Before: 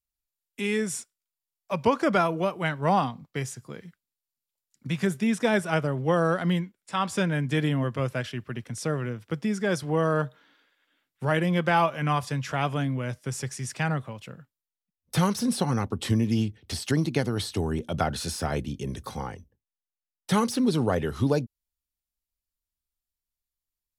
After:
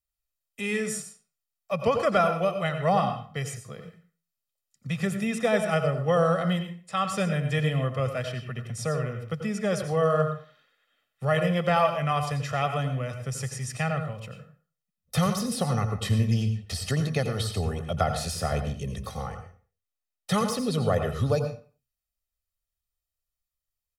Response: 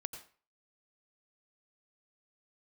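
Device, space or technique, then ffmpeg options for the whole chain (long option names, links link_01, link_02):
microphone above a desk: -filter_complex "[0:a]aecho=1:1:1.6:0.76[link_01];[1:a]atrim=start_sample=2205[link_02];[link_01][link_02]afir=irnorm=-1:irlink=0"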